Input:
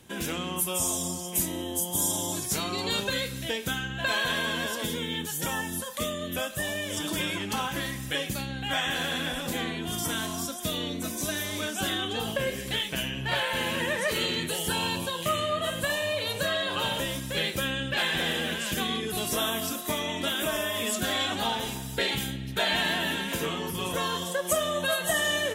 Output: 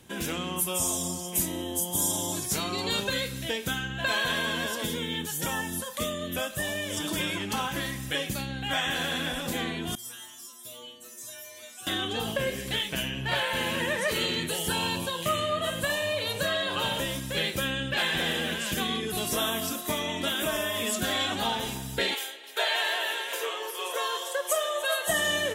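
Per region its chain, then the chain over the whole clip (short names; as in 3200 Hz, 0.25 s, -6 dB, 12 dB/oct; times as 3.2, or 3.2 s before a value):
9.95–11.87 tilt +2 dB/oct + metallic resonator 120 Hz, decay 0.81 s, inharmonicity 0.002
22.14–25.08 elliptic high-pass 420 Hz, stop band 70 dB + echo 0.296 s -16 dB
whole clip: dry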